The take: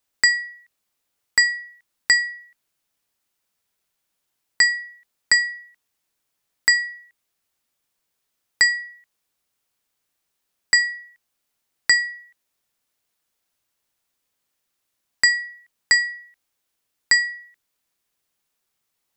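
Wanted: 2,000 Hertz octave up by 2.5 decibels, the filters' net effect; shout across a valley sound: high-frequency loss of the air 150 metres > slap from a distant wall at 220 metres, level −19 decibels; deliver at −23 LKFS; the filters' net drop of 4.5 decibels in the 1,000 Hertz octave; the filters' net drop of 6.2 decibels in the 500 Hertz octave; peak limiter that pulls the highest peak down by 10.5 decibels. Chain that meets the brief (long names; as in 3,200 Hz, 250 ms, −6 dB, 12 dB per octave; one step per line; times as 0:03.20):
parametric band 500 Hz −6 dB
parametric band 1,000 Hz −6 dB
parametric band 2,000 Hz +5.5 dB
brickwall limiter −11.5 dBFS
high-frequency loss of the air 150 metres
slap from a distant wall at 220 metres, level −19 dB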